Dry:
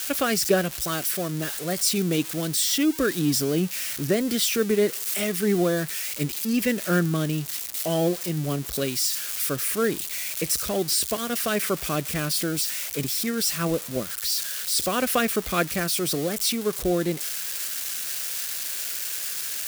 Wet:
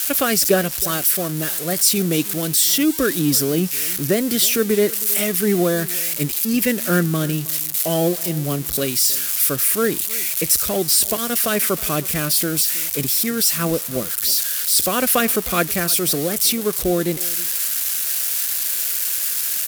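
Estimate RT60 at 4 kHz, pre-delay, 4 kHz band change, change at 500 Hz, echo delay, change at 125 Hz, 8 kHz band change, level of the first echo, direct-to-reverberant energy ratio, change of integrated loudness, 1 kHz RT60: no reverb audible, no reverb audible, +5.0 dB, +4.0 dB, 318 ms, +4.0 dB, +8.0 dB, −20.0 dB, no reverb audible, +6.5 dB, no reverb audible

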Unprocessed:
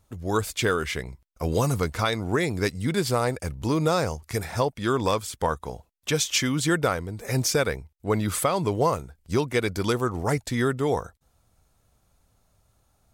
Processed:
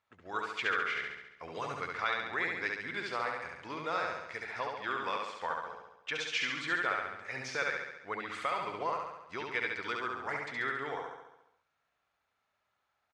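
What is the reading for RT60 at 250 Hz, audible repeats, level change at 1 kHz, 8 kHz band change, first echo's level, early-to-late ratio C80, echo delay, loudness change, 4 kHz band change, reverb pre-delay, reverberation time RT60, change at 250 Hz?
no reverb audible, 7, −6.5 dB, −21.5 dB, −3.0 dB, no reverb audible, 69 ms, −9.5 dB, −9.5 dB, no reverb audible, no reverb audible, −20.0 dB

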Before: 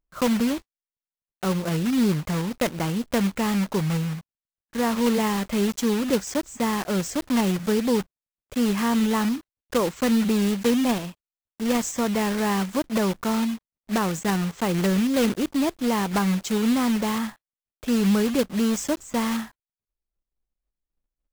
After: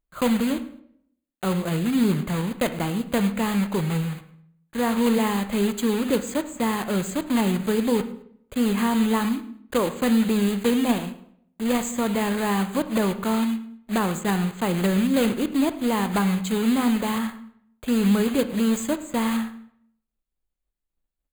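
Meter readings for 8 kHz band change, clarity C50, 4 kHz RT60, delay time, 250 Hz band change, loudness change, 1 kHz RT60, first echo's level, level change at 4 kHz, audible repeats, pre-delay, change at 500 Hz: −1.5 dB, 12.5 dB, 0.50 s, 106 ms, +0.5 dB, +0.5 dB, 0.60 s, −20.0 dB, −1.0 dB, 2, 19 ms, +0.5 dB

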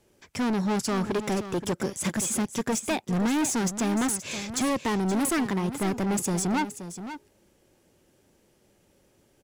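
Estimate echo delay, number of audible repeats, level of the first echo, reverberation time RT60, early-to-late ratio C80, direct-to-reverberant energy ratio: 525 ms, 1, −11.5 dB, no reverb audible, no reverb audible, no reverb audible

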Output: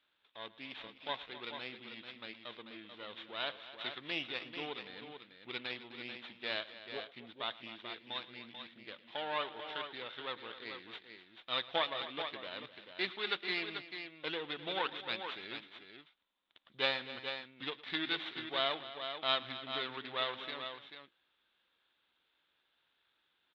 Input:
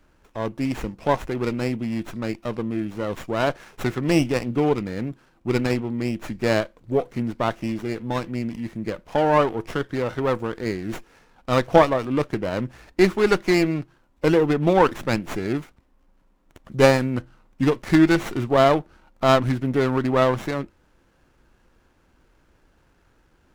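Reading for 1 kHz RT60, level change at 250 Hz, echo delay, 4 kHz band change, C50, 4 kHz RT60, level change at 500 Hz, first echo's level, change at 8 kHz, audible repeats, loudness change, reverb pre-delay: no reverb audible, −27.0 dB, 111 ms, −2.0 dB, no reverb audible, no reverb audible, −22.0 dB, −19.5 dB, below −30 dB, 3, −16.5 dB, no reverb audible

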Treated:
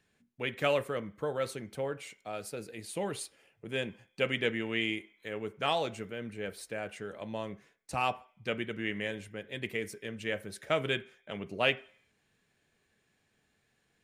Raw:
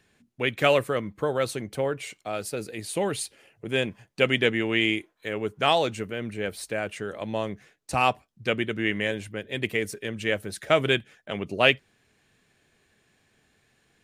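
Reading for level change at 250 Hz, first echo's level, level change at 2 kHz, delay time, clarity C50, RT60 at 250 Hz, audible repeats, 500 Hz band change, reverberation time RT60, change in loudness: −8.5 dB, no echo audible, −8.5 dB, no echo audible, 19.0 dB, 0.35 s, no echo audible, −8.0 dB, 0.45 s, −8.0 dB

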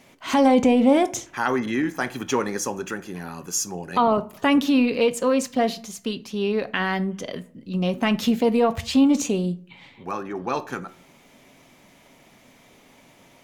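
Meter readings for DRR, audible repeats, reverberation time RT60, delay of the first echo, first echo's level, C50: 11.5 dB, no echo audible, 0.50 s, no echo audible, no echo audible, 19.0 dB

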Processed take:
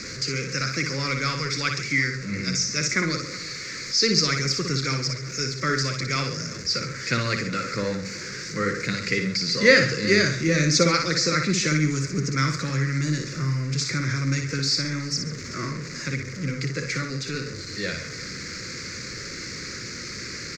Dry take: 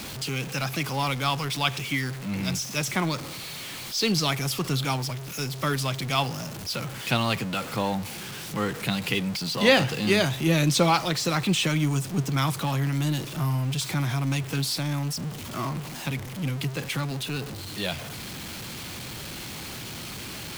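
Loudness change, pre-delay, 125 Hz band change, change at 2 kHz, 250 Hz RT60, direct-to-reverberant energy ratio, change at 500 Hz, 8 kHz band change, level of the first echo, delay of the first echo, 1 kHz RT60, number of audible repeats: +2.5 dB, no reverb audible, +0.5 dB, +5.5 dB, no reverb audible, no reverb audible, +2.5 dB, +5.0 dB, −6.0 dB, 59 ms, no reverb audible, 3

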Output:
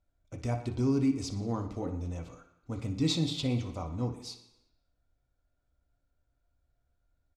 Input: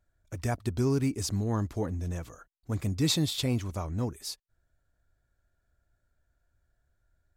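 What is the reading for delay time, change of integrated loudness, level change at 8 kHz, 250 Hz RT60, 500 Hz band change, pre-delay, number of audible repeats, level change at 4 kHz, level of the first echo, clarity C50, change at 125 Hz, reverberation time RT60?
60 ms, −2.0 dB, −8.0 dB, 0.85 s, −2.5 dB, 3 ms, 1, −3.5 dB, −13.0 dB, 9.0 dB, −3.0 dB, 0.95 s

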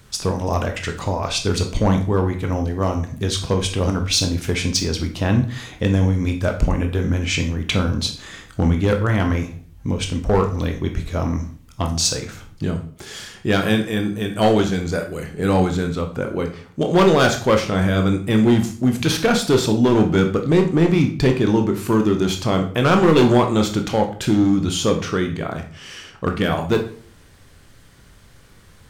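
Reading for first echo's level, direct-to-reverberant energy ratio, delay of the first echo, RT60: no echo audible, 4.0 dB, no echo audible, 0.50 s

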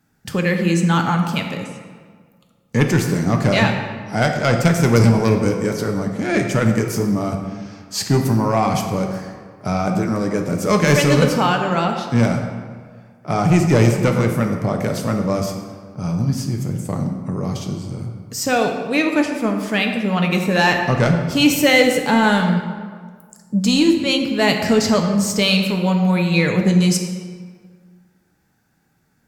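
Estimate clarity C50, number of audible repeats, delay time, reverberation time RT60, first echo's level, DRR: 5.5 dB, no echo audible, no echo audible, 1.7 s, no echo audible, 3.0 dB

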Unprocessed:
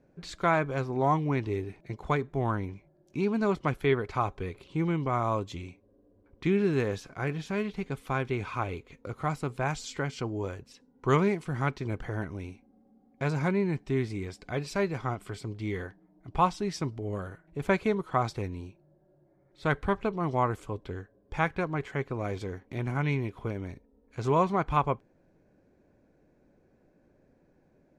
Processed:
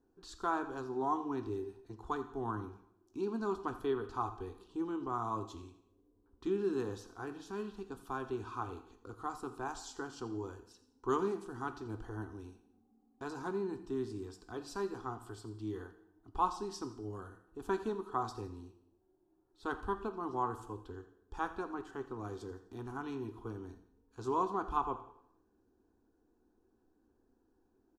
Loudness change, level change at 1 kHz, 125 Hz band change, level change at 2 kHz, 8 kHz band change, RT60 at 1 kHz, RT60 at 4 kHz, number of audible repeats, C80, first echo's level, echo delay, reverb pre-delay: −8.5 dB, −6.5 dB, −16.5 dB, −12.5 dB, −6.5 dB, 0.70 s, 0.65 s, 2, 13.5 dB, −16.5 dB, 85 ms, 5 ms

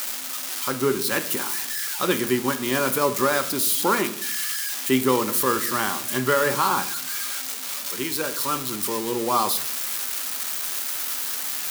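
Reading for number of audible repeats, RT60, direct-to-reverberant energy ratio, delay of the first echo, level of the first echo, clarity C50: no echo audible, 0.65 s, 9.0 dB, no echo audible, no echo audible, 14.0 dB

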